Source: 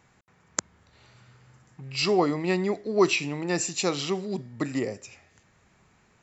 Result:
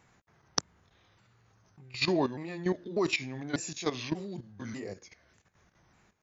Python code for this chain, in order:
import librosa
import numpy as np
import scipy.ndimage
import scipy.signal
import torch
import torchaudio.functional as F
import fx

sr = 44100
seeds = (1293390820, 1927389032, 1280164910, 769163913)

y = fx.pitch_ramps(x, sr, semitones=-3.5, every_ms=593)
y = fx.level_steps(y, sr, step_db=13)